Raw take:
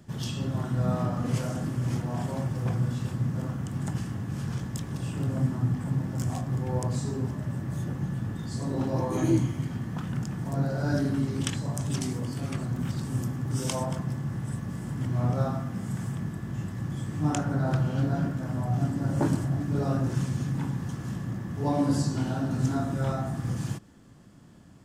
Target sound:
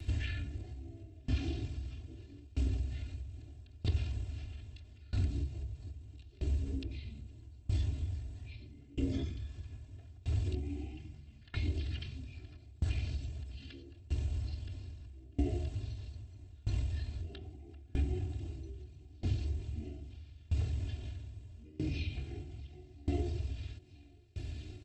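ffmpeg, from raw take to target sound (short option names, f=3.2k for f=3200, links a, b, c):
-filter_complex "[0:a]highshelf=f=8.9k:g=11.5,aecho=1:1:978|1956|2934|3912:0.0944|0.05|0.0265|0.0141,asplit=2[a][b];[b]asoftclip=type=tanh:threshold=-19dB,volume=-5dB[c];[a][c]amix=inputs=2:normalize=0,acompressor=threshold=-32dB:ratio=8,bandreject=f=73.23:t=h:w=4,bandreject=f=146.46:t=h:w=4,bandreject=f=219.69:t=h:w=4,bandreject=f=292.92:t=h:w=4,bandreject=f=366.15:t=h:w=4,bandreject=f=439.38:t=h:w=4,bandreject=f=512.61:t=h:w=4,bandreject=f=585.84:t=h:w=4,bandreject=f=659.07:t=h:w=4,bandreject=f=732.3:t=h:w=4,bandreject=f=805.53:t=h:w=4,bandreject=f=878.76:t=h:w=4,bandreject=f=951.99:t=h:w=4,bandreject=f=1.02522k:t=h:w=4,bandreject=f=1.09845k:t=h:w=4,bandreject=f=1.17168k:t=h:w=4,bandreject=f=1.24491k:t=h:w=4,bandreject=f=1.31814k:t=h:w=4,bandreject=f=1.39137k:t=h:w=4,bandreject=f=1.4646k:t=h:w=4,bandreject=f=1.53783k:t=h:w=4,bandreject=f=1.61106k:t=h:w=4,bandreject=f=1.68429k:t=h:w=4,asetrate=23361,aresample=44100,atempo=1.88775,equalizer=f=100:t=o:w=0.67:g=9,equalizer=f=250:t=o:w=0.67:g=9,equalizer=f=1k:t=o:w=0.67:g=-9,equalizer=f=2.5k:t=o:w=0.67:g=8,equalizer=f=10k:t=o:w=0.67:g=4,acrossover=split=4100[d][e];[e]acompressor=threshold=-57dB:ratio=4:attack=1:release=60[f];[d][f]amix=inputs=2:normalize=0,aecho=1:1:2.9:0.94,aeval=exprs='val(0)*pow(10,-26*if(lt(mod(0.78*n/s,1),2*abs(0.78)/1000),1-mod(0.78*n/s,1)/(2*abs(0.78)/1000),(mod(0.78*n/s,1)-2*abs(0.78)/1000)/(1-2*abs(0.78)/1000))/20)':c=same,volume=-1.5dB"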